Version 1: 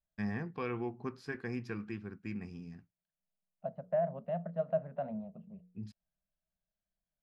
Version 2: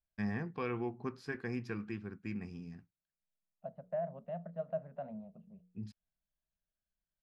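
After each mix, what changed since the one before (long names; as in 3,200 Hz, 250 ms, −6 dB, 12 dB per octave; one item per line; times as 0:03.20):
second voice −5.5 dB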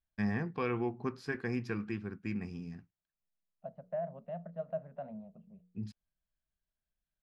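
first voice +3.5 dB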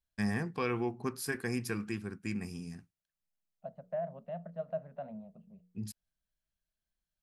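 master: remove high-frequency loss of the air 200 metres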